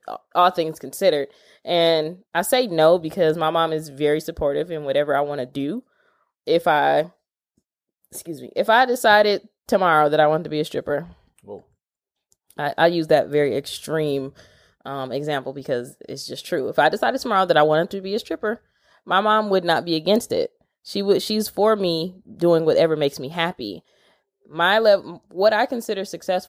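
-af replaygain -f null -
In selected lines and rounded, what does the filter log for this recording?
track_gain = +0.1 dB
track_peak = 0.500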